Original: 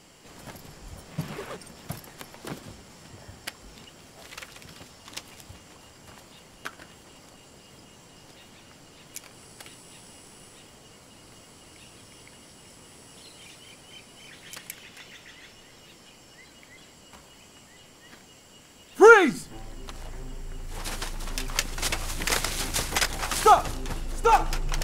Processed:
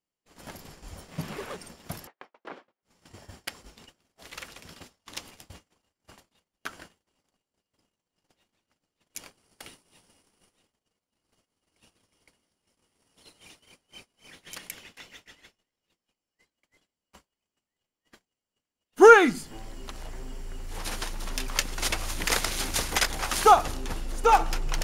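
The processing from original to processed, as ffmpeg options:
-filter_complex "[0:a]asettb=1/sr,asplit=3[a][b][c];[a]atrim=end=2.074[d];[b]atrim=start=2.07:end=2.83,asetpts=PTS-STARTPTS,afade=t=in:d=0.004:c=qsin,afade=t=out:st=0.756:d=0.004:c=qsin,highpass=460,lowpass=2.1k[e];[c]atrim=start=2.826[f];[d][e]acrossfade=d=0.004:c1=hsin:c2=qsin[g];[g][f]acrossfade=d=0.004:c1=qsin:c2=hsin,bandreject=f=7.9k:w=15,agate=range=-38dB:threshold=-46dB:ratio=16:detection=peak,equalizer=f=130:t=o:w=0.36:g=-7"

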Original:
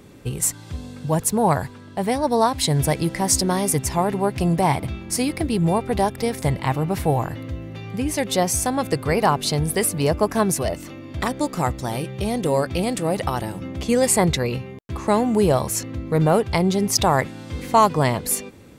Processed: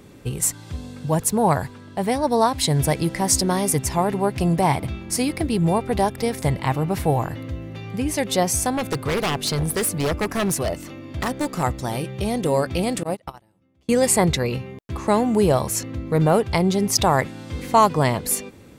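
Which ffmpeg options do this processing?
-filter_complex "[0:a]asettb=1/sr,asplit=3[a][b][c];[a]atrim=end=8.724[d];[b]atrim=start=8.72:end=11.63,asetpts=PTS-STARTPTS,afade=t=in:d=0.004:c=qsin,afade=t=out:st=2.906:d=0.004:c=qsin,aeval=exprs='0.158*(abs(mod(val(0)/0.158+3,4)-2)-1)':c=same[e];[c]atrim=start=11.626[f];[d][e]acrossfade=d=0.004:c1=hsin:c2=qsin[g];[g][f]acrossfade=d=0.004:c1=qsin:c2=hsin,asettb=1/sr,asplit=3[h][i][j];[h]atrim=end=13.034[k];[i]atrim=start=13.03:end=13.89,asetpts=PTS-STARTPTS,afade=t=in:d=0.004:c=qsin,afade=t=out:st=0.856:d=0.004:c=qsin,agate=range=-33dB:threshold=-21dB:ratio=16:release=100:detection=peak[l];[j]atrim=start=13.886[m];[k][l]acrossfade=d=0.004:c1=hsin:c2=qsin[n];[n][m]acrossfade=d=0.004:c1=qsin:c2=hsin"

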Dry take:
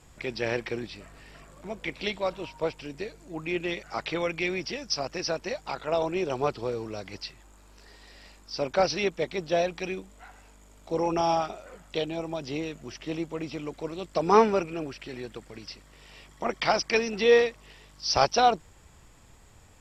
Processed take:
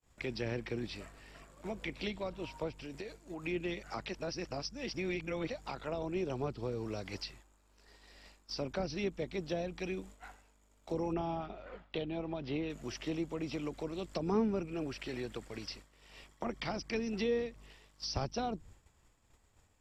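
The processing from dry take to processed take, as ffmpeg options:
-filter_complex "[0:a]asettb=1/sr,asplit=3[a][b][c];[a]atrim=end=2.724[d];[b]atrim=start=2.72:end=3.45,asetpts=PTS-STARTPTS,afade=t=in:d=0.004:c=qsin,afade=t=out:st=0.726:d=0.004:c=qsin,acompressor=threshold=-38dB:ratio=6:attack=3.2:release=140:knee=1:detection=peak[e];[c]atrim=start=3.446[f];[d][e]acrossfade=d=0.004:c1=hsin:c2=qsin[g];[g][f]acrossfade=d=0.004:c1=qsin:c2=hsin,asettb=1/sr,asplit=3[h][i][j];[h]atrim=end=11.134[k];[i]atrim=start=11.13:end=12.7,asetpts=PTS-STARTPTS,afade=t=in:d=0.004:c=qsin,afade=t=out:st=1.566:d=0.004:c=qsin,lowpass=f=3.9k:w=0.5412,lowpass=f=3.9k:w=1.3066[l];[j]atrim=start=12.696[m];[k][l]acrossfade=d=0.004:c1=hsin:c2=qsin[n];[n][m]acrossfade=d=0.004:c1=qsin:c2=hsin,asplit=3[o][p][q];[o]atrim=end=4.092[r];[p]atrim=start=4.088:end=5.502,asetpts=PTS-STARTPTS,areverse[s];[q]atrim=start=5.498[t];[r][s]acrossfade=d=0.004:c1=hsin:c2=hsin[u];[u][t]acrossfade=d=0.004:c1=hsin:c2=hsin,agate=range=-33dB:threshold=-44dB:ratio=3:detection=peak,equalizer=f=160:t=o:w=0.43:g=-3.5,acrossover=split=280[v][w];[w]acompressor=threshold=-39dB:ratio=6[x];[v][x]amix=inputs=2:normalize=0"

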